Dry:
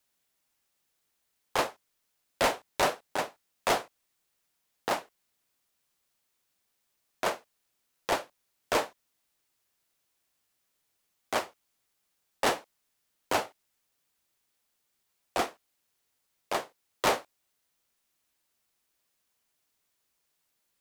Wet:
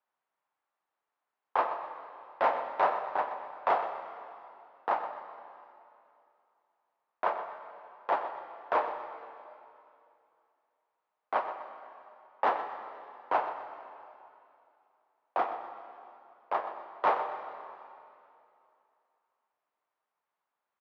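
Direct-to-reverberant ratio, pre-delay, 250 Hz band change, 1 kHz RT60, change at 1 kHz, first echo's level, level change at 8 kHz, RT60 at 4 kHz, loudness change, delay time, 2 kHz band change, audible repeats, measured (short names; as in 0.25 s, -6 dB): 6.0 dB, 5 ms, -9.0 dB, 2.6 s, +3.5 dB, -11.5 dB, under -30 dB, 2.5 s, -1.5 dB, 0.125 s, -4.5 dB, 2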